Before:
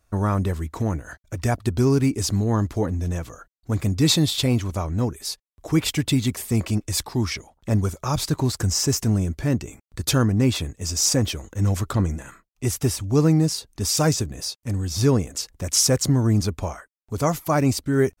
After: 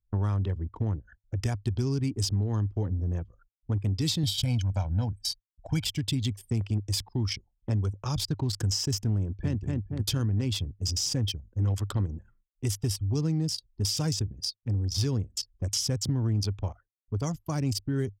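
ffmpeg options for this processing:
ffmpeg -i in.wav -filter_complex "[0:a]asettb=1/sr,asplit=3[link_01][link_02][link_03];[link_01]atrim=end=4.234[link_04];[link_02]atrim=start=4.23:end=5.85,asetpts=PTS-STARTPTS,afade=type=in:duration=0.004:curve=qsin,afade=type=out:start_time=1.616:duration=0.004:curve=qsin,aecho=1:1:1.3:0.96,atrim=end_sample=71442[link_05];[link_03]atrim=start=5.846[link_06];[link_04][link_05]acrossfade=duration=0.004:curve1=hsin:curve2=qsin[link_07];[link_07][link_06]acrossfade=duration=0.004:curve1=qsin:curve2=hsin,asplit=2[link_08][link_09];[link_09]afade=type=in:start_time=9.2:duration=0.01,afade=type=out:start_time=9.6:duration=0.01,aecho=0:1:230|460|690|920|1150|1380|1610|1840:0.707946|0.38937|0.214154|0.117784|0.0647815|0.0356298|0.0195964|0.010778[link_10];[link_08][link_10]amix=inputs=2:normalize=0,anlmdn=100,equalizer=frequency=100:width_type=o:width=0.33:gain=10,equalizer=frequency=630:width_type=o:width=0.33:gain=-4,equalizer=frequency=1250:width_type=o:width=0.33:gain=-3,equalizer=frequency=3150:width_type=o:width=0.33:gain=11,equalizer=frequency=5000:width_type=o:width=0.33:gain=8,acrossover=split=240|4900[link_11][link_12][link_13];[link_11]acompressor=threshold=-22dB:ratio=4[link_14];[link_12]acompressor=threshold=-31dB:ratio=4[link_15];[link_13]acompressor=threshold=-29dB:ratio=4[link_16];[link_14][link_15][link_16]amix=inputs=3:normalize=0,volume=-4.5dB" out.wav

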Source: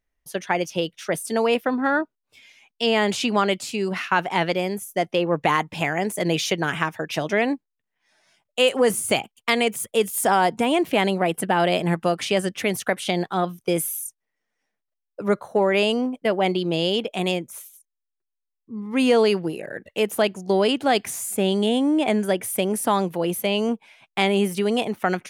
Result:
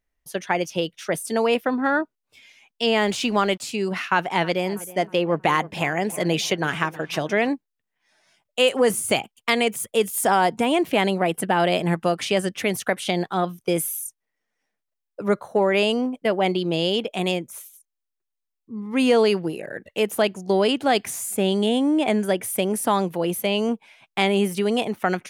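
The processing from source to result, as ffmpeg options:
ffmpeg -i in.wav -filter_complex "[0:a]asettb=1/sr,asplit=3[link_01][link_02][link_03];[link_01]atrim=end=2.974[link_04];[link_02]atrim=start=2.97:end=3.61,asetpts=PTS-STARTPTS,afade=type=in:duration=0.004:curve=qsin,afade=type=out:start_time=0.636:duration=0.004:curve=qsin,aeval=exprs='sgn(val(0))*max(abs(val(0))-0.00398,0)':channel_layout=same[link_05];[link_03]atrim=start=3.606[link_06];[link_04][link_05]acrossfade=duration=0.004:curve1=hsin:curve2=qsin[link_07];[link_07][link_06]acrossfade=duration=0.004:curve1=qsin:curve2=hsin,asettb=1/sr,asplit=3[link_08][link_09][link_10];[link_08]atrim=end=4.124[link_11];[link_09]atrim=start=4.12:end=7.49,asetpts=PTS-STARTPTS,afade=type=in:duration=0.004:curve=qsin,afade=type=out:start_time=3.366:duration=0.004:curve=qsin,asplit=2[link_12][link_13];[link_13]adelay=318,lowpass=frequency=2000:poles=1,volume=-18dB,asplit=2[link_14][link_15];[link_15]adelay=318,lowpass=frequency=2000:poles=1,volume=0.5,asplit=2[link_16][link_17];[link_17]adelay=318,lowpass=frequency=2000:poles=1,volume=0.5,asplit=2[link_18][link_19];[link_19]adelay=318,lowpass=frequency=2000:poles=1,volume=0.5[link_20];[link_12][link_14][link_16][link_18][link_20]amix=inputs=5:normalize=0,atrim=end_sample=148617[link_21];[link_10]atrim=start=7.486[link_22];[link_11][link_21]acrossfade=duration=0.004:curve1=hsin:curve2=qsin[link_23];[link_23][link_22]acrossfade=duration=0.004:curve1=qsin:curve2=hsin" out.wav

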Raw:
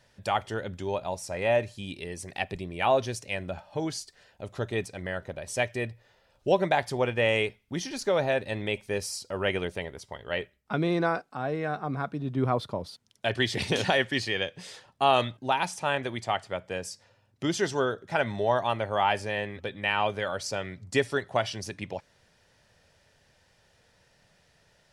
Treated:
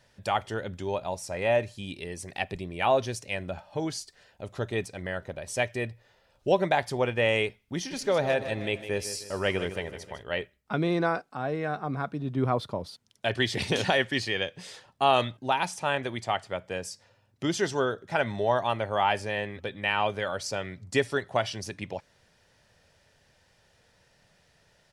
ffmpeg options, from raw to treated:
ffmpeg -i in.wav -filter_complex "[0:a]asplit=3[link_01][link_02][link_03];[link_01]afade=type=out:start_time=7.9:duration=0.02[link_04];[link_02]aecho=1:1:155|310|465|620|775:0.251|0.116|0.0532|0.0244|0.0112,afade=type=in:start_time=7.9:duration=0.02,afade=type=out:start_time=10.22:duration=0.02[link_05];[link_03]afade=type=in:start_time=10.22:duration=0.02[link_06];[link_04][link_05][link_06]amix=inputs=3:normalize=0" out.wav

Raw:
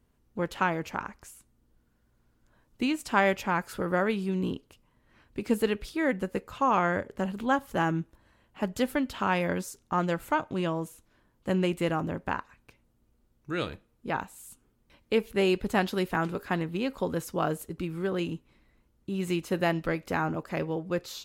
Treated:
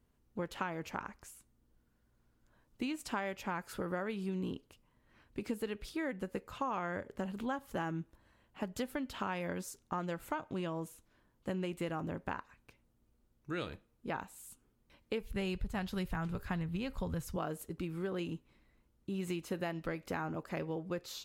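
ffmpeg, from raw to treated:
ffmpeg -i in.wav -filter_complex "[0:a]asplit=3[link_01][link_02][link_03];[link_01]afade=type=out:start_time=15.2:duration=0.02[link_04];[link_02]asubboost=boost=10:cutoff=100,afade=type=in:start_time=15.2:duration=0.02,afade=type=out:start_time=17.36:duration=0.02[link_05];[link_03]afade=type=in:start_time=17.36:duration=0.02[link_06];[link_04][link_05][link_06]amix=inputs=3:normalize=0,acompressor=threshold=-29dB:ratio=6,volume=-4.5dB" out.wav

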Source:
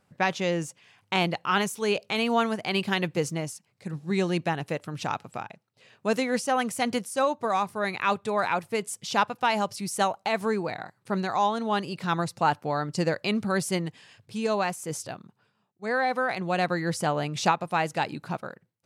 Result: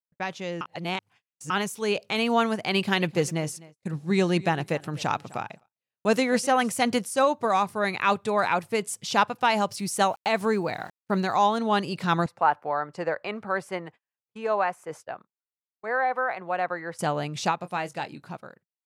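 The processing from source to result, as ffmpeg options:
ffmpeg -i in.wav -filter_complex "[0:a]asettb=1/sr,asplit=3[link_01][link_02][link_03];[link_01]atrim=end=2.614[link_04];[link_02]atrim=start=2.61:end=6.73,asetpts=PTS-STARTPTS,afade=type=in:duration=0.004:curve=qsin,afade=type=out:start_time=4.116:duration=0.004:curve=qsin,aecho=1:1:255|510:0.0944|0.0151,atrim=end_sample=181692[link_05];[link_03]atrim=start=6.726[link_06];[link_04][link_05]acrossfade=duration=0.004:curve1=hsin:curve2=qsin[link_07];[link_07][link_06]acrossfade=duration=0.004:curve1=qsin:curve2=hsin,asettb=1/sr,asplit=3[link_08][link_09][link_10];[link_08]atrim=end=9.714[link_11];[link_09]atrim=start=9.71:end=11.57,asetpts=PTS-STARTPTS,afade=type=in:duration=0.004:curve=qsin,afade=type=out:start_time=1.856:duration=0.004:curve=qsin,aeval=exprs='val(0)*gte(abs(val(0)),0.00251)':channel_layout=same[link_12];[link_10]atrim=start=11.566[link_13];[link_11][link_12]acrossfade=duration=0.004:curve1=hsin:curve2=qsin[link_14];[link_14][link_13]acrossfade=duration=0.004:curve1=qsin:curve2=hsin,asettb=1/sr,asplit=3[link_15][link_16][link_17];[link_15]atrim=end=12.264[link_18];[link_16]atrim=start=12.26:end=16.99,asetpts=PTS-STARTPTS,afade=type=in:duration=0.004:curve=qsin,afade=type=out:start_time=4.726:duration=0.004:curve=qsin,acrossover=split=470 2100:gain=0.158 1 0.1[link_19][link_20][link_21];[link_19][link_20][link_21]amix=inputs=3:normalize=0[link_22];[link_17]atrim=start=16.986[link_23];[link_18][link_22]acrossfade=duration=0.004:curve1=hsin:curve2=qsin[link_24];[link_24][link_23]acrossfade=duration=0.004:curve1=qsin:curve2=hsin,asettb=1/sr,asplit=3[link_25][link_26][link_27];[link_25]atrim=end=17.594[link_28];[link_26]atrim=start=17.59:end=18.3,asetpts=PTS-STARTPTS,afade=type=in:duration=0.004:curve=qsin,afade=type=out:start_time=0.706:duration=0.004:curve=qsin,asplit=2[link_29][link_30];[link_30]adelay=22,volume=-12dB[link_31];[link_29][link_31]amix=inputs=2:normalize=0,atrim=end_sample=31311[link_32];[link_27]atrim=start=18.296[link_33];[link_28][link_32]acrossfade=duration=0.004:curve1=hsin:curve2=qsin[link_34];[link_34][link_33]acrossfade=duration=0.004:curve1=qsin:curve2=hsin,asplit=3[link_35][link_36][link_37];[link_35]atrim=end=0.612[link_38];[link_36]atrim=start=0.608:end=1.502,asetpts=PTS-STARTPTS,areverse[link_39];[link_37]atrim=start=1.498[link_40];[link_38][link_39]acrossfade=duration=0.004:curve1=hsin:curve2=hsin[link_41];[link_41][link_40]acrossfade=duration=0.004:curve1=hsin:curve2=hsin,agate=range=-42dB:threshold=-48dB:ratio=16:detection=peak,dynaudnorm=framelen=160:gausssize=21:maxgain=11.5dB,volume=-6.5dB" out.wav

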